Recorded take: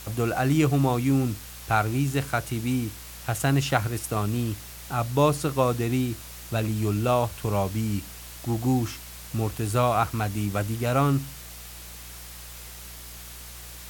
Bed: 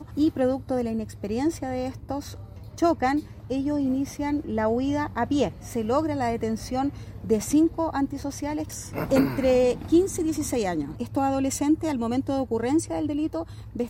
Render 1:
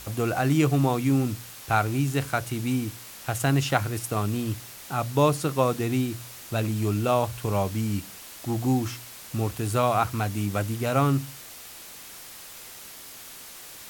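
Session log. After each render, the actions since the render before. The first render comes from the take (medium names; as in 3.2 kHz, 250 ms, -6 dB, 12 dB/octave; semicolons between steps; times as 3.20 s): de-hum 60 Hz, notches 3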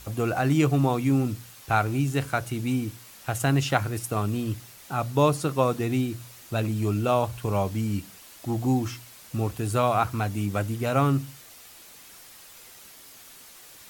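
noise reduction 6 dB, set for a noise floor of -44 dBFS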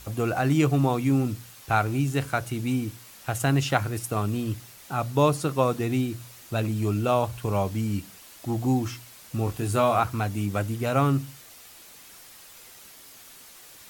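9.45–10.00 s: doubling 21 ms -6 dB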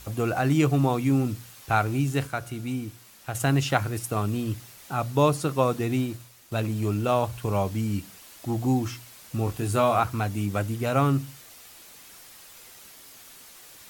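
2.27–3.35 s: feedback comb 71 Hz, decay 1.5 s, mix 40%; 5.96–7.22 s: companding laws mixed up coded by A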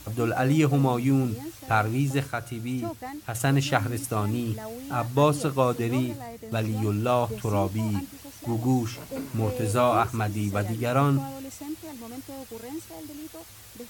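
add bed -14 dB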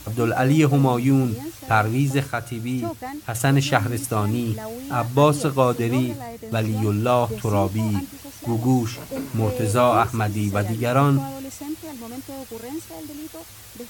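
trim +4.5 dB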